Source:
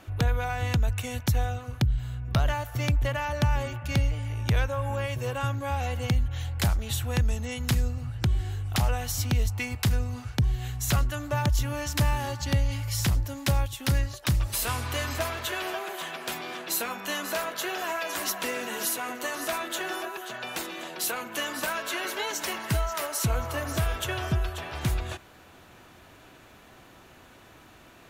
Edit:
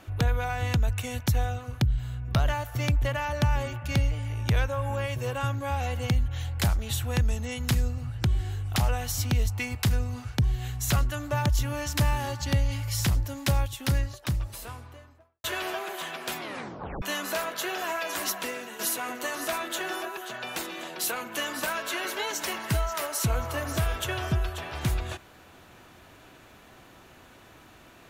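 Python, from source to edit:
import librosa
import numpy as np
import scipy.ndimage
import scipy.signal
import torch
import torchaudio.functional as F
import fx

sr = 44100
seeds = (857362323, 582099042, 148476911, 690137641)

y = fx.studio_fade_out(x, sr, start_s=13.64, length_s=1.8)
y = fx.edit(y, sr, fx.tape_stop(start_s=16.39, length_s=0.63),
    fx.fade_out_to(start_s=18.29, length_s=0.5, floor_db=-10.0), tone=tone)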